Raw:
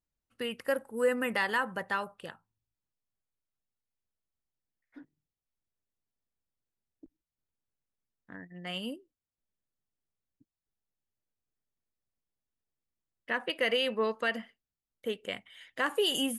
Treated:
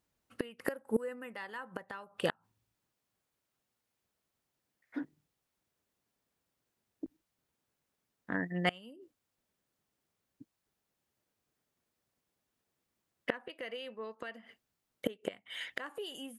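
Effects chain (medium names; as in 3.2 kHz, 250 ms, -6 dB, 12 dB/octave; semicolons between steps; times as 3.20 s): high-pass 170 Hz 6 dB/octave; treble shelf 2.2 kHz -5 dB; inverted gate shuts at -31 dBFS, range -26 dB; trim +13.5 dB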